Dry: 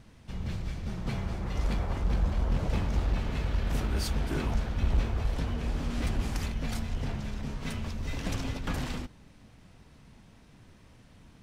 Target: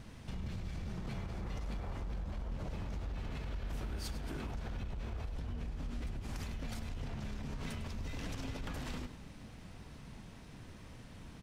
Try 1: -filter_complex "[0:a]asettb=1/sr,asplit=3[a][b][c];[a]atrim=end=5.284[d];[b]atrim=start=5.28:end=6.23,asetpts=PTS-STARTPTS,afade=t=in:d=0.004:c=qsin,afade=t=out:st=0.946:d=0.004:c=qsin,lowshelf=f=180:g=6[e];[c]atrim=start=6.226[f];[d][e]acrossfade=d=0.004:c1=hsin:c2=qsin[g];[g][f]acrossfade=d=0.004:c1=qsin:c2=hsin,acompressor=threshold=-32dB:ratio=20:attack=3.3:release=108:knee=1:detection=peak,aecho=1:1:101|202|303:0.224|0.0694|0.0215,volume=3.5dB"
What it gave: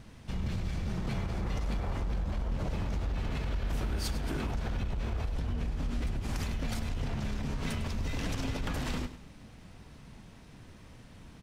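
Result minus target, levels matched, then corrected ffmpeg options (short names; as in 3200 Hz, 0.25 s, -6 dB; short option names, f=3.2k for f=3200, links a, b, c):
compressor: peak gain reduction -7.5 dB
-filter_complex "[0:a]asettb=1/sr,asplit=3[a][b][c];[a]atrim=end=5.284[d];[b]atrim=start=5.28:end=6.23,asetpts=PTS-STARTPTS,afade=t=in:d=0.004:c=qsin,afade=t=out:st=0.946:d=0.004:c=qsin,lowshelf=f=180:g=6[e];[c]atrim=start=6.226[f];[d][e]acrossfade=d=0.004:c1=hsin:c2=qsin[g];[g][f]acrossfade=d=0.004:c1=qsin:c2=hsin,acompressor=threshold=-40dB:ratio=20:attack=3.3:release=108:knee=1:detection=peak,aecho=1:1:101|202|303:0.224|0.0694|0.0215,volume=3.5dB"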